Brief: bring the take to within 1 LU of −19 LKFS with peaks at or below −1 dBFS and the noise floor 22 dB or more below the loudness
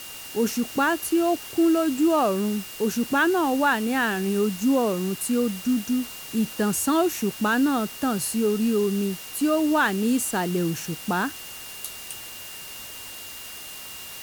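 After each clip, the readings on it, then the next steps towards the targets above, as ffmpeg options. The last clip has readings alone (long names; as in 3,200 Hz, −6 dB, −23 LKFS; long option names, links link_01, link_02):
interfering tone 2,800 Hz; level of the tone −43 dBFS; background noise floor −39 dBFS; target noise floor −46 dBFS; integrated loudness −24.0 LKFS; sample peak −10.5 dBFS; target loudness −19.0 LKFS
→ -af "bandreject=frequency=2800:width=30"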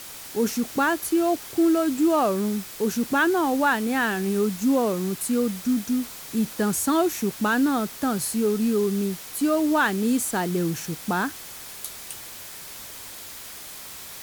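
interfering tone none found; background noise floor −40 dBFS; target noise floor −46 dBFS
→ -af "afftdn=noise_reduction=6:noise_floor=-40"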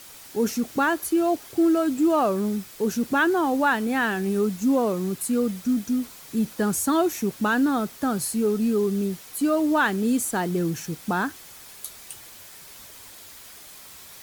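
background noise floor −45 dBFS; target noise floor −46 dBFS
→ -af "afftdn=noise_reduction=6:noise_floor=-45"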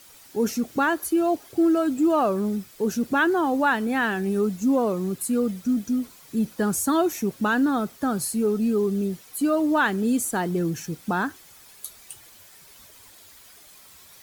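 background noise floor −50 dBFS; integrated loudness −24.0 LKFS; sample peak −11.5 dBFS; target loudness −19.0 LKFS
→ -af "volume=5dB"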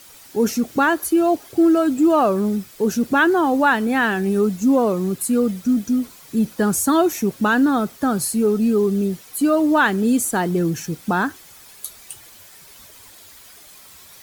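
integrated loudness −19.0 LKFS; sample peak −6.5 dBFS; background noise floor −45 dBFS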